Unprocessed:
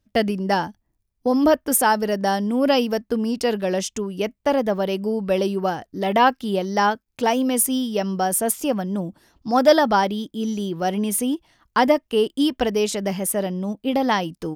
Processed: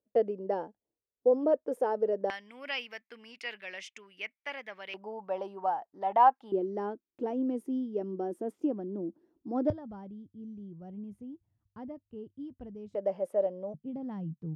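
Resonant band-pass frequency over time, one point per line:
resonant band-pass, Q 4.8
480 Hz
from 0:02.30 2,200 Hz
from 0:04.94 850 Hz
from 0:06.52 340 Hz
from 0:09.70 100 Hz
from 0:12.95 560 Hz
from 0:13.74 150 Hz

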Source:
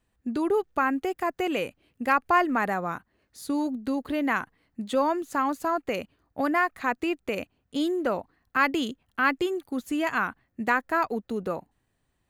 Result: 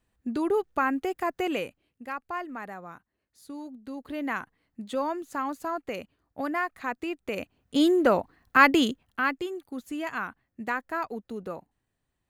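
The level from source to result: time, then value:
0:01.53 −1 dB
0:02.04 −12.5 dB
0:03.79 −12.5 dB
0:04.23 −5 dB
0:07.15 −5 dB
0:07.84 +5.5 dB
0:08.83 +5.5 dB
0:09.40 −6 dB

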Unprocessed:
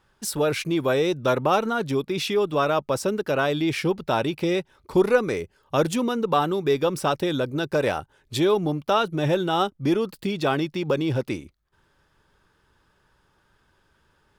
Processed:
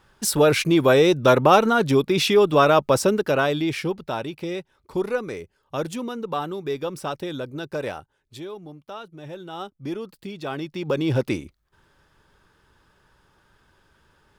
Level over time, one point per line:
0:02.99 +6 dB
0:04.25 −6 dB
0:07.87 −6 dB
0:08.51 −16 dB
0:09.25 −16 dB
0:09.85 −8.5 dB
0:10.44 −8.5 dB
0:11.18 +3.5 dB

